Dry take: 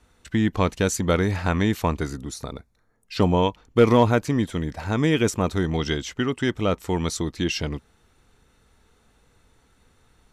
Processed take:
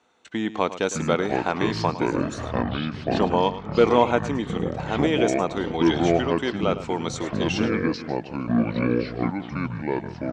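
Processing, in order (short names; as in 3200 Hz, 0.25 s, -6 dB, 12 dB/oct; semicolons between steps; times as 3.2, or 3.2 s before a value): speaker cabinet 300–6800 Hz, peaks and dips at 780 Hz +4 dB, 1800 Hz -4 dB, 5000 Hz -8 dB; echo 0.106 s -14 dB; echoes that change speed 0.468 s, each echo -6 st, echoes 3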